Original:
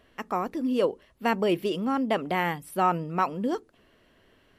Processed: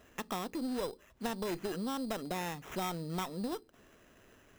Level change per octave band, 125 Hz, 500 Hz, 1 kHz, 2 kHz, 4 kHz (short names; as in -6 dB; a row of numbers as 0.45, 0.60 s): -7.0, -11.5, -13.0, -11.5, -5.0 dB